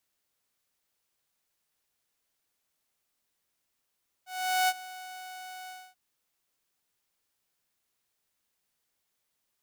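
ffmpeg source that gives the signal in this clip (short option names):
-f lavfi -i "aevalsrc='0.106*(2*mod(741*t,1)-1)':d=1.686:s=44100,afade=t=in:d=0.424,afade=t=out:st=0.424:d=0.044:silence=0.112,afade=t=out:st=1.43:d=0.256"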